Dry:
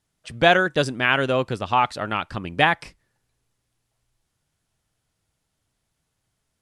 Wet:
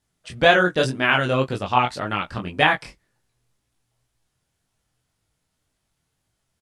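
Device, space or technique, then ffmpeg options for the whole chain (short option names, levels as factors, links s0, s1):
double-tracked vocal: -filter_complex "[0:a]asplit=2[s0][s1];[s1]adelay=16,volume=0.299[s2];[s0][s2]amix=inputs=2:normalize=0,flanger=delay=19:depth=5.8:speed=1.9,volume=1.5"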